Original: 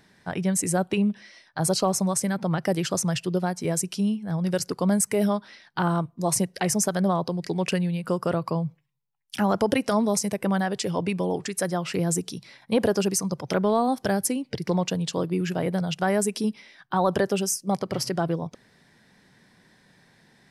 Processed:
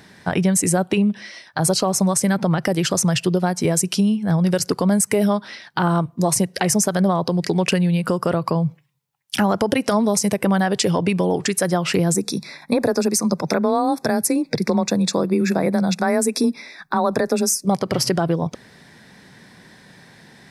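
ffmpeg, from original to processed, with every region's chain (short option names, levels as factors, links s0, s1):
-filter_complex "[0:a]asettb=1/sr,asplit=3[s0][s1][s2];[s0]atrim=end=12.144[s3];[s1]atrim=start=12.14:end=17.65,asetpts=PTS-STARTPTS,afade=t=in:d=0.004:c=qsin,afade=t=out:st=5.506:d=0.004:c=qsin,asuperstop=centerf=3000:order=8:qfactor=3.8,afreqshift=23[s4];[s2]atrim=start=17.646[s5];[s3][s4]acrossfade=d=0.004:c1=hsin:c2=qsin[s6];[s6][s5]acrossfade=d=0.004:c1=qsin:c2=hsin,highpass=41,acompressor=threshold=0.0501:ratio=6,alimiter=level_in=7.94:limit=0.891:release=50:level=0:latency=1,volume=0.473"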